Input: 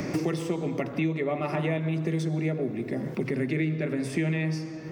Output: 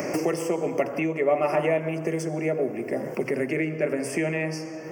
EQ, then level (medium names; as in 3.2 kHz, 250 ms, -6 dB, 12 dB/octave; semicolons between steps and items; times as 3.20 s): Butterworth band-stop 3.8 kHz, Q 2; tilt EQ +2.5 dB/octave; peaking EQ 570 Hz +11 dB 1.5 oct; 0.0 dB